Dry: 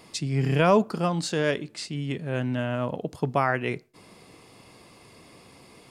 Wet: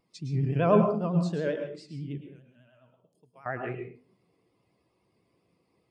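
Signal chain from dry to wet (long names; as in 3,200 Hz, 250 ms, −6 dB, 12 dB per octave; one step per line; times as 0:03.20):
0:02.21–0:03.46: first-order pre-emphasis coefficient 0.9
pitch vibrato 10 Hz 95 cents
on a send at −3 dB: convolution reverb RT60 0.60 s, pre-delay 103 ms
on the sum: every bin expanded away from the loudest bin 1.5 to 1
level −3 dB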